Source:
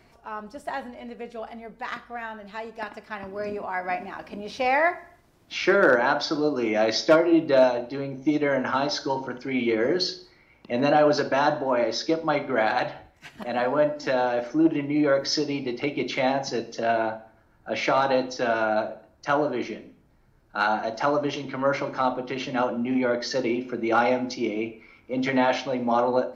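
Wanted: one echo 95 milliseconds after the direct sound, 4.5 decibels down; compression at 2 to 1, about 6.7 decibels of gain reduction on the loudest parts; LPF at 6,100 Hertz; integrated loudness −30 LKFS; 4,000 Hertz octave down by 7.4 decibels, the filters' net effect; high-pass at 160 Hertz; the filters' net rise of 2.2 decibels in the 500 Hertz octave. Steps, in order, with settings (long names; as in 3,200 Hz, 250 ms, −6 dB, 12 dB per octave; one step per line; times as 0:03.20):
high-pass filter 160 Hz
low-pass filter 6,100 Hz
parametric band 500 Hz +3 dB
parametric band 4,000 Hz −8.5 dB
downward compressor 2 to 1, threshold −24 dBFS
single-tap delay 95 ms −4.5 dB
level −3.5 dB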